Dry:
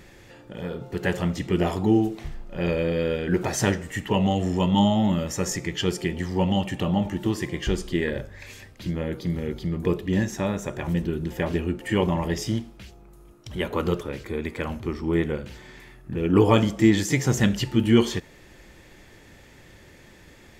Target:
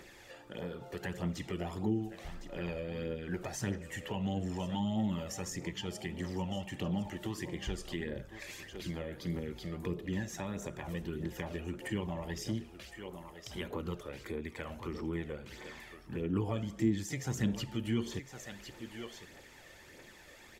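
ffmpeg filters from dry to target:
-filter_complex "[0:a]bass=f=250:g=-12,treble=f=4k:g=1,aecho=1:1:1058:0.141,aphaser=in_gain=1:out_gain=1:delay=1.8:decay=0.42:speed=1.6:type=triangular,acrossover=split=230[a][b];[b]acompressor=threshold=-37dB:ratio=5[c];[a][c]amix=inputs=2:normalize=0,volume=-3.5dB"

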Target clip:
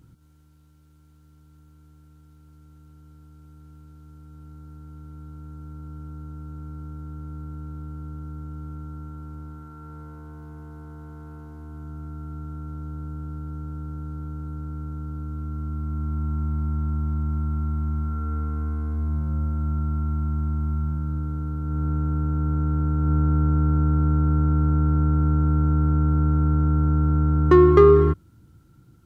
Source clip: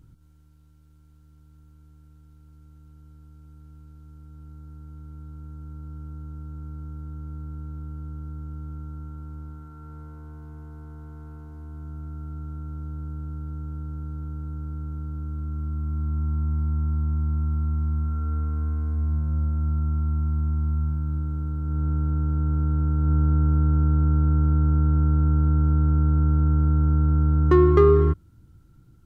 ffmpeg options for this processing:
-af "highpass=f=120:p=1,volume=4dB"

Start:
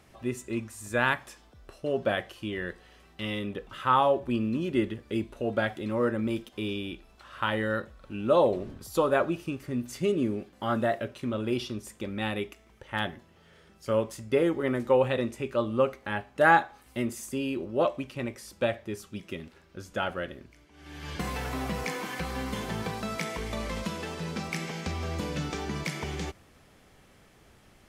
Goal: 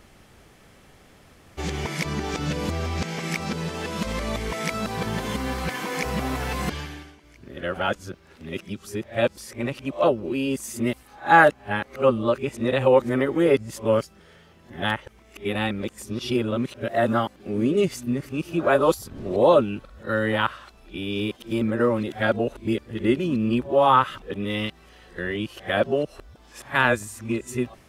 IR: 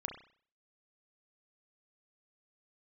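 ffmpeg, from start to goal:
-af "areverse,volume=5.5dB"

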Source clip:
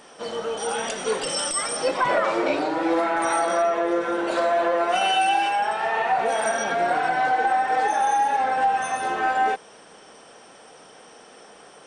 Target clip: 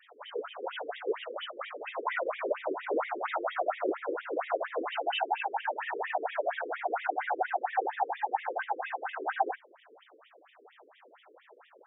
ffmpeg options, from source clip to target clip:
-af "afftfilt=real='hypot(re,im)*cos(2*PI*random(0))':imag='hypot(re,im)*sin(2*PI*random(1))':win_size=512:overlap=0.75,afftfilt=real='re*between(b*sr/1024,360*pow(2700/360,0.5+0.5*sin(2*PI*4.3*pts/sr))/1.41,360*pow(2700/360,0.5+0.5*sin(2*PI*4.3*pts/sr))*1.41)':imag='im*between(b*sr/1024,360*pow(2700/360,0.5+0.5*sin(2*PI*4.3*pts/sr))/1.41,360*pow(2700/360,0.5+0.5*sin(2*PI*4.3*pts/sr))*1.41)':win_size=1024:overlap=0.75,volume=2dB"

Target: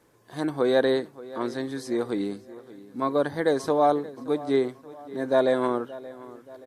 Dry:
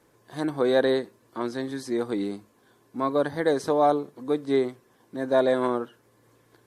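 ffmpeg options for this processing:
-filter_complex "[0:a]asettb=1/sr,asplit=3[a][b][c];[a]atrim=end=2.334[d];[b]atrim=start=2.33:end=3.02,asetpts=PTS-STARTPTS,afade=t=in:d=0.004:c=qsin,afade=t=out:st=0.686:d=0.004:c=qsin,equalizer=f=840:t=o:w=1.5:g=-9[e];[c]atrim=start=3.016[f];[d][e]acrossfade=d=0.004:c1=hsin:c2=qsin[g];[g][f]acrossfade=d=0.004:c1=qsin:c2=hsin,asplit=2[h][i];[i]adelay=577,lowpass=f=3.5k:p=1,volume=-18dB,asplit=2[j][k];[k]adelay=577,lowpass=f=3.5k:p=1,volume=0.51,asplit=2[l][m];[m]adelay=577,lowpass=f=3.5k:p=1,volume=0.51,asplit=2[n][o];[o]adelay=577,lowpass=f=3.5k:p=1,volume=0.51[p];[j][l][n][p]amix=inputs=4:normalize=0[q];[h][q]amix=inputs=2:normalize=0"

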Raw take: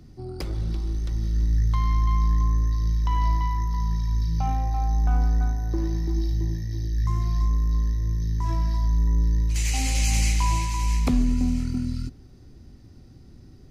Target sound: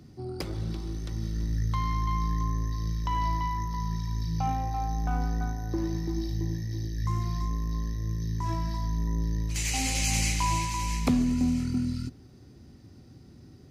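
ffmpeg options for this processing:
-af "highpass=89"

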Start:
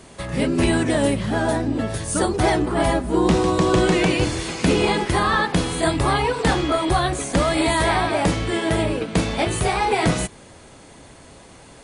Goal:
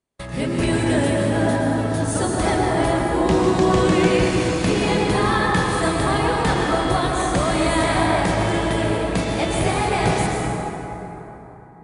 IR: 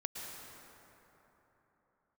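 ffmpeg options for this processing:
-filter_complex "[0:a]agate=range=-36dB:threshold=-35dB:ratio=16:detection=peak[a];[1:a]atrim=start_sample=2205[b];[a][b]afir=irnorm=-1:irlink=0"

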